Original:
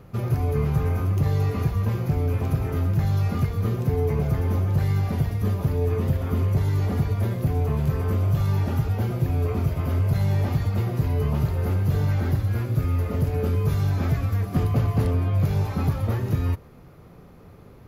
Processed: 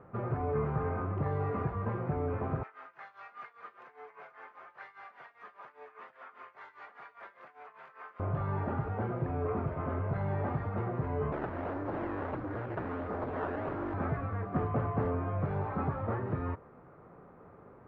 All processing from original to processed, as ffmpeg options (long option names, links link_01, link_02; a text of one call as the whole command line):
ffmpeg -i in.wav -filter_complex "[0:a]asettb=1/sr,asplit=3[link_01][link_02][link_03];[link_01]atrim=end=2.634[link_04];[link_02]atrim=start=2.63:end=8.2,asetpts=PTS-STARTPTS,afade=type=in:duration=0.004:curve=qsin,afade=type=out:start_time=5.566:duration=0.004:curve=qsin,highpass=1400,aemphasis=mode=production:type=75kf,tremolo=f=5:d=0.86[link_05];[link_03]atrim=start=8.196[link_06];[link_04][link_05]acrossfade=duration=0.004:curve1=hsin:curve2=qsin[link_07];[link_07][link_06]acrossfade=duration=0.004:curve1=qsin:curve2=hsin,asettb=1/sr,asplit=3[link_08][link_09][link_10];[link_08]atrim=end=11.324[link_11];[link_09]atrim=start=11.32:end=13.94,asetpts=PTS-STARTPTS,afade=type=in:duration=0.004:curve=qsin,afade=type=out:start_time=2.616:duration=0.004:curve=qsin,bandreject=frequency=890:width=12,acrusher=samples=14:mix=1:aa=0.000001:lfo=1:lforange=14:lforate=1.5,aeval=exprs='0.0631*(abs(mod(val(0)/0.0631+3,4)-2)-1)':channel_layout=same[link_12];[link_10]atrim=start=13.936[link_13];[link_11][link_12]acrossfade=duration=0.004:curve1=hsin:curve2=qsin[link_14];[link_14][link_13]acrossfade=duration=0.004:curve1=qsin:curve2=hsin,lowpass=frequency=1500:width=0.5412,lowpass=frequency=1500:width=1.3066,aemphasis=mode=production:type=riaa" out.wav